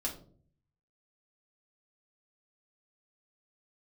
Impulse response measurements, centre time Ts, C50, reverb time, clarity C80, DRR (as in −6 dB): 19 ms, 10.0 dB, 0.50 s, 14.5 dB, −2.5 dB